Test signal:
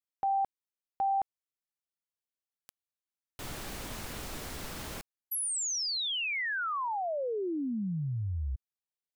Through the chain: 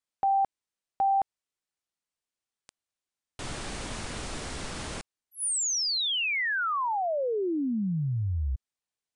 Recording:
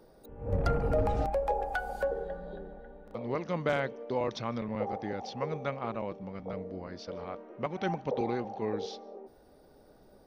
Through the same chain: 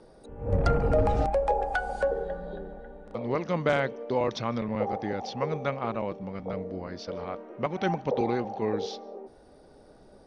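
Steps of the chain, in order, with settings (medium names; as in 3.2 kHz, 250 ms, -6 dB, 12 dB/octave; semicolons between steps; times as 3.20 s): steep low-pass 10 kHz 96 dB/octave; trim +4.5 dB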